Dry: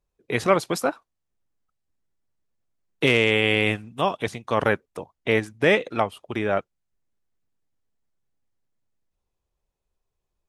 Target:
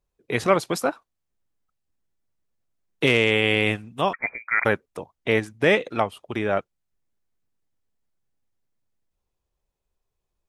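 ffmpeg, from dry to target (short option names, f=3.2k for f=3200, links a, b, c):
-filter_complex "[0:a]asettb=1/sr,asplit=3[a][b][c];[a]atrim=end=4.134[d];[b]atrim=start=4.13:end=4.65,asetpts=PTS-STARTPTS,afade=t=in:d=0.004:c=qsin,afade=t=out:st=0.516:d=0.004:c=qsin,lowpass=f=2.1k:t=q:w=0.5098,lowpass=f=2.1k:t=q:w=0.6013,lowpass=f=2.1k:t=q:w=0.9,lowpass=f=2.1k:t=q:w=2.563,afreqshift=-2500[e];[c]atrim=start=4.646[f];[d][e]acrossfade=d=0.004:c1=hsin:c2=qsin[g];[g][f]acrossfade=d=0.004:c1=qsin:c2=hsin"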